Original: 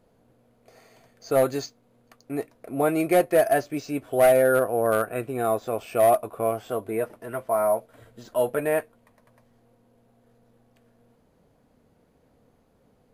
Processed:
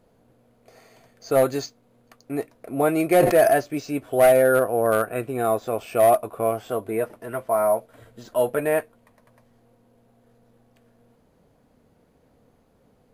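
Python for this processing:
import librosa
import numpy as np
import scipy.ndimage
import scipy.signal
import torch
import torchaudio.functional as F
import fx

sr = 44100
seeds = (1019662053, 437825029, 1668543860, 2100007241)

y = fx.sustainer(x, sr, db_per_s=47.0, at=(3.12, 3.52))
y = y * librosa.db_to_amplitude(2.0)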